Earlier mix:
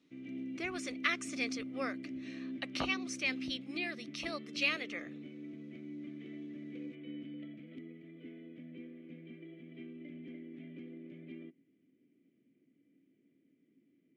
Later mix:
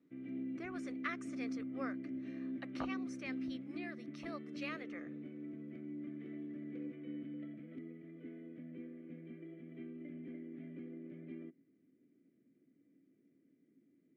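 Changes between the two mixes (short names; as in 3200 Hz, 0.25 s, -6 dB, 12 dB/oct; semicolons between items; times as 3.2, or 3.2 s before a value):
speech -6.5 dB; master: add resonant high shelf 2100 Hz -8.5 dB, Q 1.5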